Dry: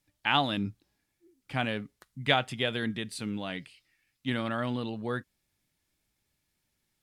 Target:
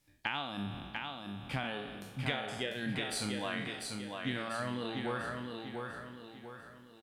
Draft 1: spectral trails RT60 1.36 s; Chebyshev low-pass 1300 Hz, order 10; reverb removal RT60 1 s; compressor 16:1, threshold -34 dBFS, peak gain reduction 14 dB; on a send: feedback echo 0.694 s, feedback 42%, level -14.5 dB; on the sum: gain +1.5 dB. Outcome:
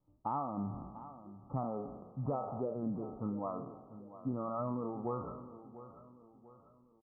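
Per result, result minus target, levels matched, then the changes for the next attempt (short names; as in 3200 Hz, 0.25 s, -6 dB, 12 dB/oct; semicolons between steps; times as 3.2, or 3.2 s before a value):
echo-to-direct -10 dB; 1000 Hz band +2.5 dB
change: feedback echo 0.694 s, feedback 42%, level -4.5 dB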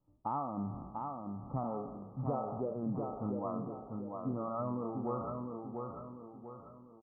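1000 Hz band +3.0 dB
remove: Chebyshev low-pass 1300 Hz, order 10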